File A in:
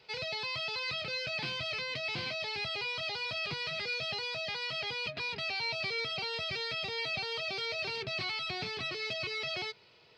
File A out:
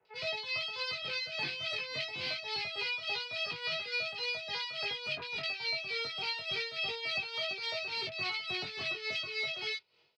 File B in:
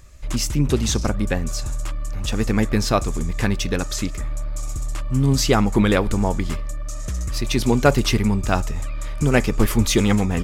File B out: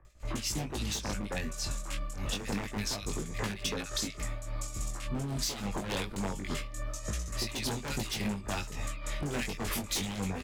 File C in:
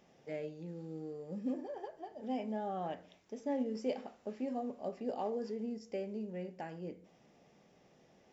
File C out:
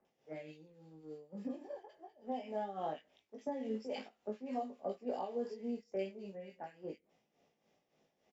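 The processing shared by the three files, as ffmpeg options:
ffmpeg -i in.wav -filter_complex "[0:a]agate=range=-10dB:threshold=-42dB:ratio=16:detection=peak,acrossover=split=130[link_01][link_02];[link_01]asoftclip=type=tanh:threshold=-24.5dB[link_03];[link_03][link_02]amix=inputs=2:normalize=0,bass=frequency=250:gain=-5,treble=frequency=4000:gain=-8,acrossover=split=1600[link_04][link_05];[link_05]adelay=50[link_06];[link_04][link_06]amix=inputs=2:normalize=0,acrossover=split=230|3000[link_07][link_08][link_09];[link_08]acompressor=threshold=-26dB:ratio=6[link_10];[link_07][link_10][link_09]amix=inputs=3:normalize=0,aeval=exprs='0.1*(abs(mod(val(0)/0.1+3,4)-2)-1)':channel_layout=same,highshelf=frequency=2200:gain=8.5,tremolo=f=3.5:d=0.68,flanger=delay=18.5:depth=2.7:speed=0.26,acompressor=threshold=-36dB:ratio=6,volume=5dB" out.wav

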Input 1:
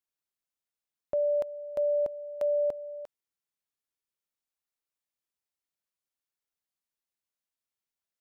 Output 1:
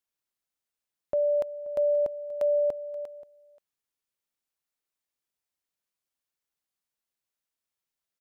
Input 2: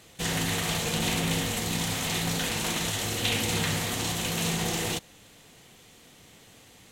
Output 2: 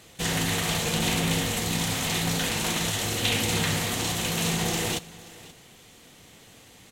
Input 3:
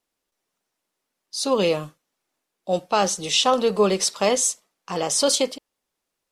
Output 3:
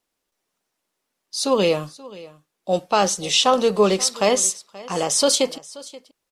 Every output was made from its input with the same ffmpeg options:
ffmpeg -i in.wav -af "aecho=1:1:530:0.1,volume=2dB" out.wav

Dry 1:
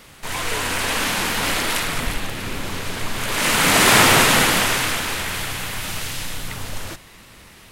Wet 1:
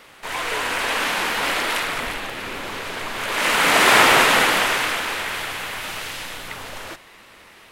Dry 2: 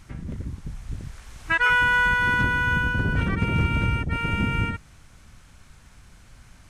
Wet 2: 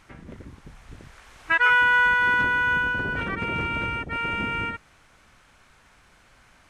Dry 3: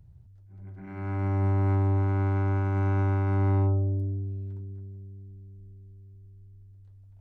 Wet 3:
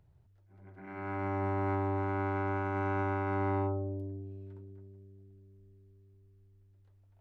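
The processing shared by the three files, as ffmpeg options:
ffmpeg -i in.wav -af "bass=frequency=250:gain=-14,treble=frequency=4000:gain=-8,volume=1.5dB" out.wav

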